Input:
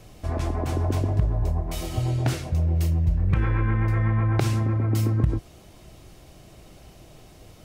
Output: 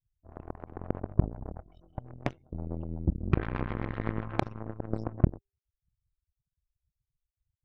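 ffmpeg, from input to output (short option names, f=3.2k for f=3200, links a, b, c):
-filter_complex "[0:a]afftfilt=real='re*gte(hypot(re,im),0.0355)':imag='im*gte(hypot(re,im),0.0355)':win_size=1024:overlap=0.75,aemphasis=mode=reproduction:type=50fm,bandreject=f=399.9:t=h:w=4,bandreject=f=799.8:t=h:w=4,bandreject=f=1.1997k:t=h:w=4,bandreject=f=1.5996k:t=h:w=4,bandreject=f=1.9995k:t=h:w=4,bandreject=f=2.3994k:t=h:w=4,bandreject=f=2.7993k:t=h:w=4,bandreject=f=3.1992k:t=h:w=4,bandreject=f=3.5991k:t=h:w=4,bandreject=f=3.999k:t=h:w=4,bandreject=f=4.3989k:t=h:w=4,bandreject=f=4.7988k:t=h:w=4,bandreject=f=5.1987k:t=h:w=4,bandreject=f=5.5986k:t=h:w=4,bandreject=f=5.9985k:t=h:w=4,bandreject=f=6.3984k:t=h:w=4,bandreject=f=6.7983k:t=h:w=4,bandreject=f=7.1982k:t=h:w=4,bandreject=f=7.5981k:t=h:w=4,bandreject=f=7.998k:t=h:w=4,bandreject=f=8.3979k:t=h:w=4,bandreject=f=8.7978k:t=h:w=4,bandreject=f=9.1977k:t=h:w=4,bandreject=f=9.5976k:t=h:w=4,bandreject=f=9.9975k:t=h:w=4,bandreject=f=10.3974k:t=h:w=4,bandreject=f=10.7973k:t=h:w=4,bandreject=f=11.1972k:t=h:w=4,asplit=2[a][b];[b]acrusher=bits=2:mix=0:aa=0.5,volume=-4dB[c];[a][c]amix=inputs=2:normalize=0,aeval=exprs='0.596*(cos(1*acos(clip(val(0)/0.596,-1,1)))-cos(1*PI/2))+0.188*(cos(3*acos(clip(val(0)/0.596,-1,1)))-cos(3*PI/2))+0.00841*(cos(8*acos(clip(val(0)/0.596,-1,1)))-cos(8*PI/2))':c=same,volume=-4.5dB"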